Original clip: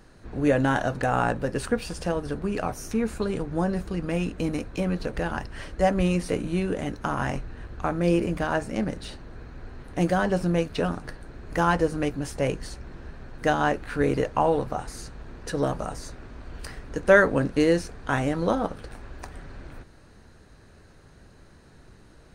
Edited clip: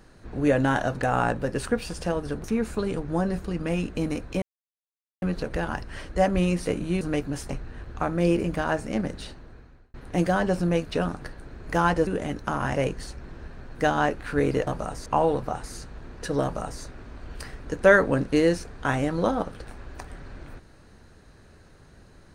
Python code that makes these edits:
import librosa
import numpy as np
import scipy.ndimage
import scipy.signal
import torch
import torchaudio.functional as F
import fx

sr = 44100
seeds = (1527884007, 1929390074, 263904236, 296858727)

y = fx.edit(x, sr, fx.cut(start_s=2.44, length_s=0.43),
    fx.insert_silence(at_s=4.85, length_s=0.8),
    fx.swap(start_s=6.64, length_s=0.69, other_s=11.9, other_length_s=0.49),
    fx.fade_out_span(start_s=9.03, length_s=0.74),
    fx.duplicate(start_s=15.67, length_s=0.39, to_s=14.3), tone=tone)